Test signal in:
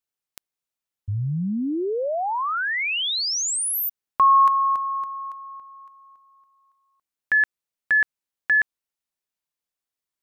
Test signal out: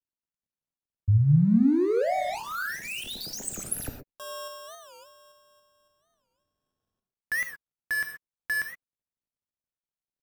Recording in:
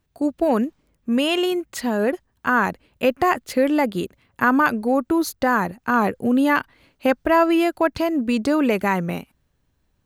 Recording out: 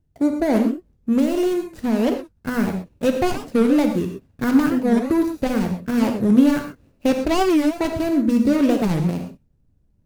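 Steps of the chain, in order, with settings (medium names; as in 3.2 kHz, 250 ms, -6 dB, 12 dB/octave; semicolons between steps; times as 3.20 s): median filter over 41 samples; tone controls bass +6 dB, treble +6 dB; gated-style reverb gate 150 ms flat, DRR 4 dB; warped record 45 rpm, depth 250 cents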